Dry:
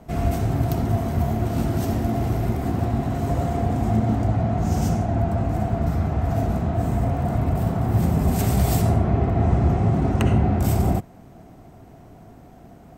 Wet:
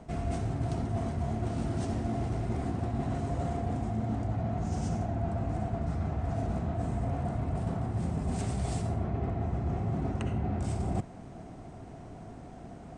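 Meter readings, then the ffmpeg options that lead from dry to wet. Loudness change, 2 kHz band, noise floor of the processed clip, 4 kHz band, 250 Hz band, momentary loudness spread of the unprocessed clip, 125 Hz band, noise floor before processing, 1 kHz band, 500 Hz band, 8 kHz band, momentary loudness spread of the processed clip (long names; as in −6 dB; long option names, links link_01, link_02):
−10.5 dB, −10.5 dB, −46 dBFS, −10.5 dB, −10.5 dB, 4 LU, −10.5 dB, −46 dBFS, −10.0 dB, −10.0 dB, −11.0 dB, 14 LU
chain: -af "areverse,acompressor=threshold=-28dB:ratio=10,areverse,aresample=22050,aresample=44100"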